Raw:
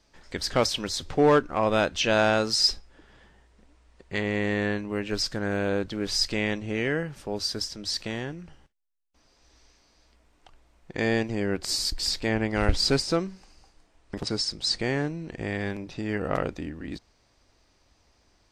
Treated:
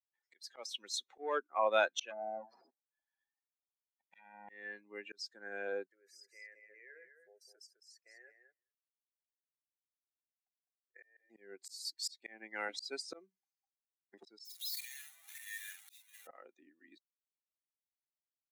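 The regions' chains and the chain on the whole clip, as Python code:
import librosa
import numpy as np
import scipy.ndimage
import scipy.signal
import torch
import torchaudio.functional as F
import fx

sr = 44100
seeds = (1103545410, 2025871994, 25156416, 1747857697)

y = fx.chain(x, sr, fx.lower_of_two(delay_ms=1.2),
    fx.env_lowpass_down(base_hz=710.0, full_db=-21.0), at=(2.1, 4.49))
y = fx.chain(y, sr, fx.level_steps(step_db=18),
    fx.fixed_phaser(hz=940.0, stages=6),
    fx.echo_feedback(ms=207, feedback_pct=15, wet_db=-4.0), at=(5.87, 11.3))
y = fx.chain(y, sr, fx.clip_1bit(),
    fx.tone_stack(knobs='10-0-10'),
    fx.doubler(ms=46.0, db=-4.5), at=(14.45, 16.27))
y = fx.bin_expand(y, sr, power=2.0)
y = scipy.signal.sosfilt(scipy.signal.bessel(6, 530.0, 'highpass', norm='mag', fs=sr, output='sos'), y)
y = fx.auto_swell(y, sr, attack_ms=491.0)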